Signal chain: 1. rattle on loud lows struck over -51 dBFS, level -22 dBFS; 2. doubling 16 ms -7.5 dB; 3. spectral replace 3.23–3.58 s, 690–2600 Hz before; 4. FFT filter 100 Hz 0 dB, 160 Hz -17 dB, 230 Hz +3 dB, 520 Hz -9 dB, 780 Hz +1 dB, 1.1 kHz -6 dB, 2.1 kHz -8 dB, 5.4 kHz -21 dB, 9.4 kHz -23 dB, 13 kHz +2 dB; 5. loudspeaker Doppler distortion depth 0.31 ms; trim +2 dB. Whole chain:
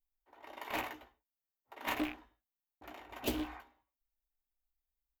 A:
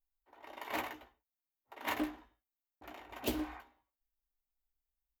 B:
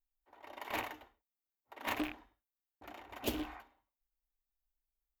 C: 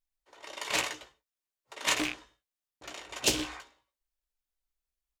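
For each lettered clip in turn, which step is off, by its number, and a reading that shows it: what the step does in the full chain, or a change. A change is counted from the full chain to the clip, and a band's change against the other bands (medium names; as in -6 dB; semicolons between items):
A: 1, momentary loudness spread change +1 LU; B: 2, loudness change -1.0 LU; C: 4, 8 kHz band +15.0 dB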